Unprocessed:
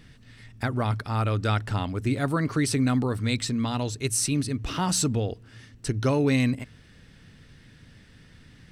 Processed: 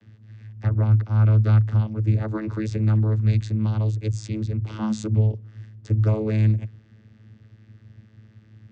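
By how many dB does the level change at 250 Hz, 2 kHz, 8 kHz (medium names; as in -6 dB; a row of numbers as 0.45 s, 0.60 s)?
-1.5 dB, -8.5 dB, under -15 dB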